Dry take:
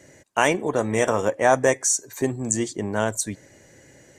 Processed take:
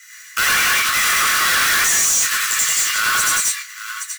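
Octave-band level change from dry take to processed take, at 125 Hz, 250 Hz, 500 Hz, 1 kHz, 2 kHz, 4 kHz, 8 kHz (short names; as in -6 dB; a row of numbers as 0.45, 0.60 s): -11.5, -14.0, -16.5, +4.5, +12.5, +18.0, +11.0 dB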